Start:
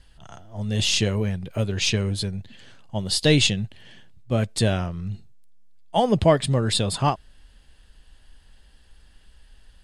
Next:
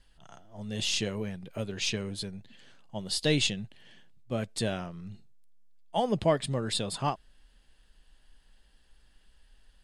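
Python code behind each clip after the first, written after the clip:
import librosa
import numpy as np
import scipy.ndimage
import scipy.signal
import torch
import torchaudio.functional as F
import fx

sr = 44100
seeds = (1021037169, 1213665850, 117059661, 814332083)

y = fx.peak_eq(x, sr, hz=82.0, db=-14.0, octaves=0.69)
y = y * librosa.db_to_amplitude(-7.5)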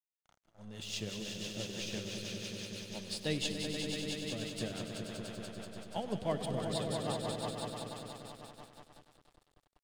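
y = fx.echo_swell(x, sr, ms=96, loudest=5, wet_db=-6)
y = fx.rotary(y, sr, hz=6.0)
y = np.sign(y) * np.maximum(np.abs(y) - 10.0 ** (-46.0 / 20.0), 0.0)
y = y * librosa.db_to_amplitude(-8.0)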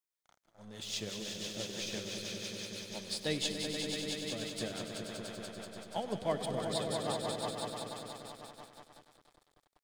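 y = fx.low_shelf(x, sr, hz=210.0, db=-8.5)
y = fx.notch(y, sr, hz=2800.0, q=9.9)
y = y * librosa.db_to_amplitude(2.5)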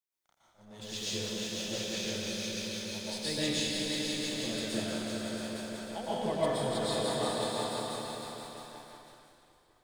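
y = fx.rev_plate(x, sr, seeds[0], rt60_s=1.1, hf_ratio=0.9, predelay_ms=105, drr_db=-8.5)
y = y * librosa.db_to_amplitude(-4.5)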